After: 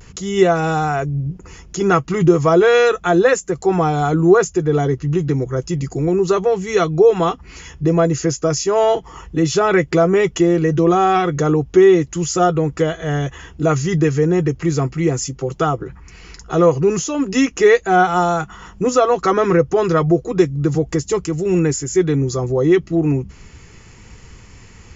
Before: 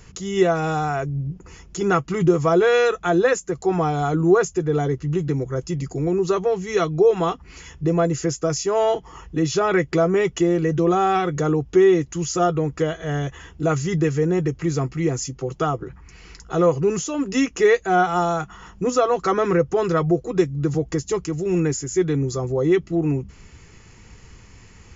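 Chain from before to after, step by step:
pitch vibrato 0.34 Hz 22 cents
level +4.5 dB

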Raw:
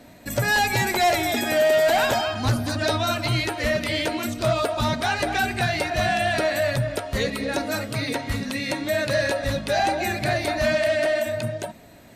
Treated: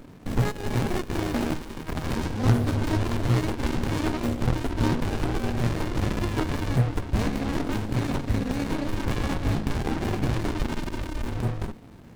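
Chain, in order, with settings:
windowed peak hold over 65 samples
level +4 dB

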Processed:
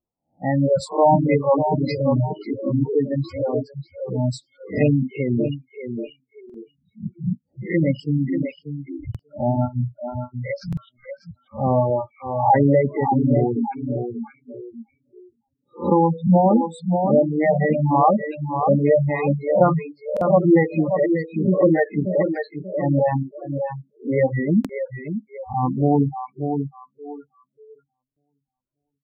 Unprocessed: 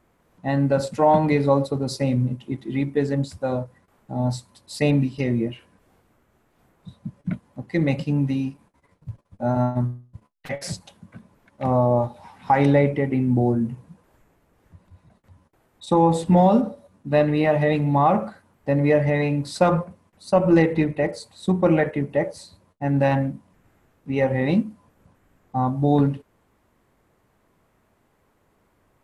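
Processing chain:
peak hold with a rise ahead of every peak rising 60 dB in 0.45 s
repeating echo 587 ms, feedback 43%, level −6 dB
reverb reduction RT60 1.1 s
0:15.93–0:16.61: high-frequency loss of the air 320 metres
noise reduction from a noise print of the clip's start 28 dB
low-pass that shuts in the quiet parts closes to 1,200 Hz, open at −19.5 dBFS
0:24.66–0:25.63: dynamic equaliser 270 Hz, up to −4 dB, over −37 dBFS, Q 0.72
gate on every frequency bin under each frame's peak −15 dB strong
buffer that repeats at 0:06.45/0:09.10/0:10.68/0:20.12/0:24.60/0:28.07, samples 2,048, times 1
level +2.5 dB

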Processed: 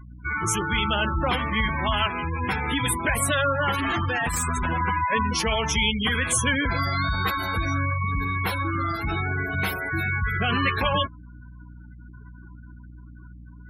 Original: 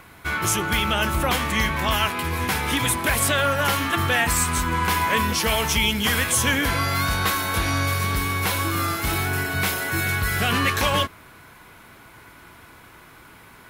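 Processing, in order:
0:03.72–0:04.81: sign of each sample alone
mains hum 60 Hz, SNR 19 dB
gate on every frequency bin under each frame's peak −15 dB strong
level −1 dB

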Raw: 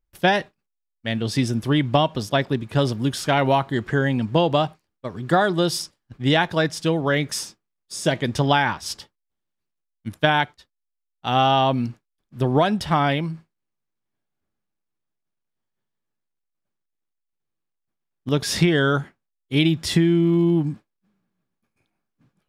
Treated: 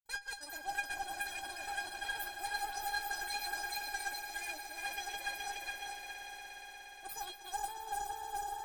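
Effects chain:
feedback delay that plays each chunk backwards 548 ms, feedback 58%, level −3.5 dB
downward expander −44 dBFS
reversed playback
downward compressor 10 to 1, threshold −29 dBFS, peak gain reduction 17.5 dB
reversed playback
stiff-string resonator 310 Hz, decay 0.45 s, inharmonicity 0.002
change of speed 2.6×
harmonic generator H 3 −21 dB, 8 −24 dB, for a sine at −31.5 dBFS
on a send: echo that builds up and dies away 118 ms, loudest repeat 5, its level −13 dB
on the sum: level +10 dB

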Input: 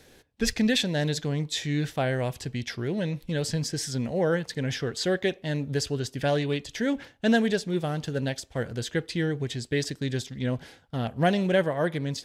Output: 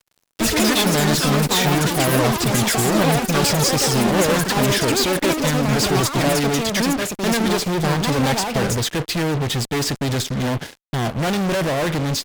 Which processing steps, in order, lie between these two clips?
high-pass filter 80 Hz 6 dB per octave
low-shelf EQ 320 Hz +2 dB
fuzz pedal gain 44 dB, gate −47 dBFS
delay with pitch and tempo change per echo 110 ms, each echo +6 semitones, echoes 3
expander for the loud parts 1.5 to 1, over −34 dBFS
level −4 dB

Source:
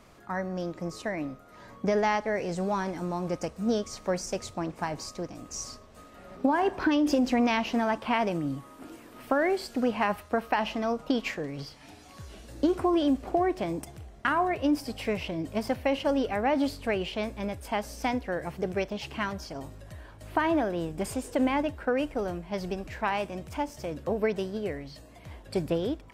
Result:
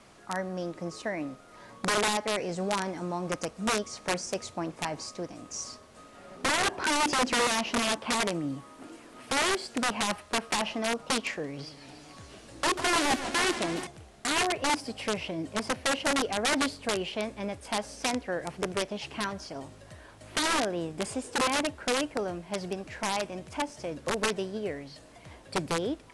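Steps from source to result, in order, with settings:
high-pass filter 68 Hz 12 dB per octave
background noise pink −59 dBFS
wrap-around overflow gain 20.5 dB
Butterworth low-pass 11,000 Hz 72 dB per octave
low-shelf EQ 140 Hz −7 dB
0:11.48–0:13.87: feedback echo with a swinging delay time 145 ms, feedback 76%, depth 174 cents, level −12 dB

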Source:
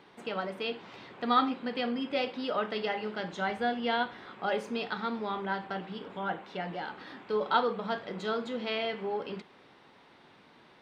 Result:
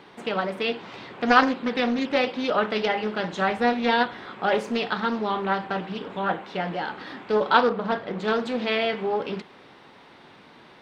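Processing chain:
0:07.69–0:08.28: high-shelf EQ 2,700 Hz −8 dB
highs frequency-modulated by the lows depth 0.36 ms
level +8 dB

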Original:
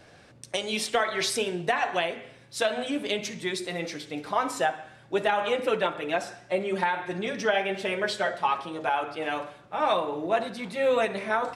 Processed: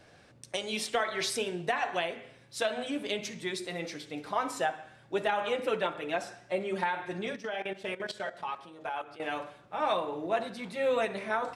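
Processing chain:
0:07.36–0:09.20: output level in coarse steps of 15 dB
level −4.5 dB

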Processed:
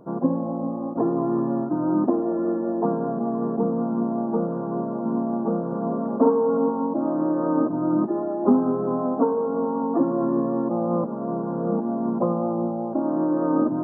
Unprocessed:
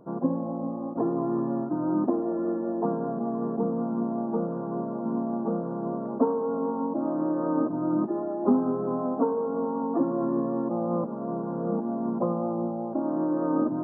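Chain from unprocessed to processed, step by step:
0:05.68–0:06.69: double-tracking delay 48 ms −4.5 dB
level +4 dB

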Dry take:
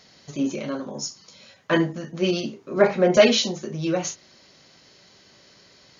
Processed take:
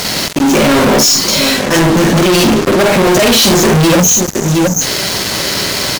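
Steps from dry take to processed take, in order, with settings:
time-frequency box erased 0:03.95–0:04.81, 310–5,800 Hz
volume swells 467 ms
multi-tap delay 47/50/717 ms −12.5/−5.5/−19 dB
in parallel at −5 dB: fuzz pedal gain 53 dB, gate −52 dBFS
on the sum: leveller curve on the samples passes 3
level +4 dB

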